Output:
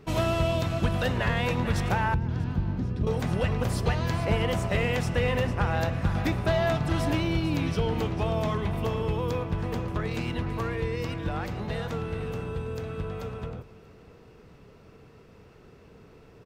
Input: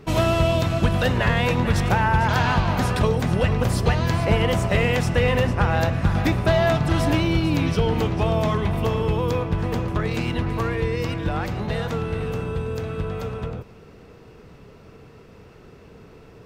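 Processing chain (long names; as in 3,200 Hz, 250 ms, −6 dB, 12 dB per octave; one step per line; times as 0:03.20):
0:02.14–0:03.07: drawn EQ curve 320 Hz 0 dB, 730 Hz −18 dB, 5,700 Hz −17 dB, 9,600 Hz −29 dB
single-tap delay 639 ms −22.5 dB
level −6 dB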